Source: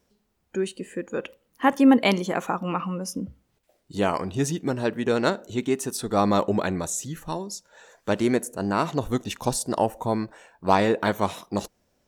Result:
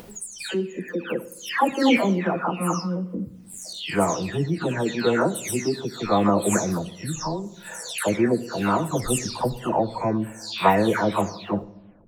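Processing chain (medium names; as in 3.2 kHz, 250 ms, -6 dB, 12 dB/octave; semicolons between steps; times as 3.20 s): delay that grows with frequency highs early, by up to 445 ms; upward compressor, threshold -28 dBFS; simulated room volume 4000 m³, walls furnished, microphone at 0.61 m; trim +2.5 dB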